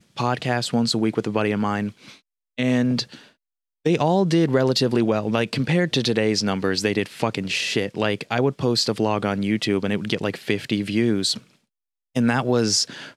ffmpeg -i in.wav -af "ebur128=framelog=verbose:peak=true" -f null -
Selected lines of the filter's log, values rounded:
Integrated loudness:
  I:         -22.1 LUFS
  Threshold: -32.5 LUFS
Loudness range:
  LRA:         3.2 LU
  Threshold: -42.5 LUFS
  LRA low:   -24.0 LUFS
  LRA high:  -20.8 LUFS
True peak:
  Peak:       -4.4 dBFS